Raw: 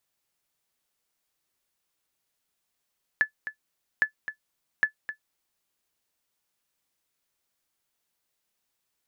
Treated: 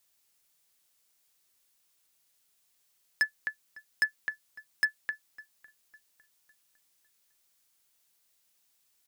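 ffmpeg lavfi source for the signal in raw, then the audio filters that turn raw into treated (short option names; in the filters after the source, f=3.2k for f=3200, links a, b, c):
-f lavfi -i "aevalsrc='0.251*(sin(2*PI*1730*mod(t,0.81))*exp(-6.91*mod(t,0.81)/0.1)+0.251*sin(2*PI*1730*max(mod(t,0.81)-0.26,0))*exp(-6.91*max(mod(t,0.81)-0.26,0)/0.1))':d=2.43:s=44100"
-filter_complex "[0:a]highshelf=f=2.7k:g=9.5,asoftclip=type=hard:threshold=-20.5dB,asplit=2[a][b];[b]adelay=554,lowpass=f=2k:p=1,volume=-20.5dB,asplit=2[c][d];[d]adelay=554,lowpass=f=2k:p=1,volume=0.49,asplit=2[e][f];[f]adelay=554,lowpass=f=2k:p=1,volume=0.49,asplit=2[g][h];[h]adelay=554,lowpass=f=2k:p=1,volume=0.49[i];[a][c][e][g][i]amix=inputs=5:normalize=0"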